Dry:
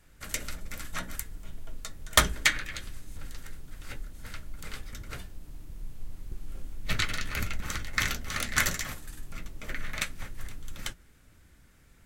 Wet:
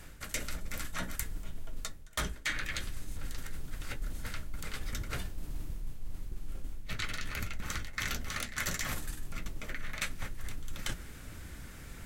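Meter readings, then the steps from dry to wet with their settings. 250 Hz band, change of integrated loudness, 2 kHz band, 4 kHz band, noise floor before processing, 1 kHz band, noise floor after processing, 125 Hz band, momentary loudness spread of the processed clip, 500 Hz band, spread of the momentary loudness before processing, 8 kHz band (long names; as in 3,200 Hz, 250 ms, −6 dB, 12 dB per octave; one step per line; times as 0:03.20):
−2.5 dB, −8.5 dB, −6.5 dB, −7.5 dB, −58 dBFS, −7.0 dB, −48 dBFS, −2.5 dB, 12 LU, −5.5 dB, 21 LU, −6.5 dB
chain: reversed playback
downward compressor 16 to 1, threshold −44 dBFS, peak gain reduction 31 dB
reversed playback
level +12.5 dB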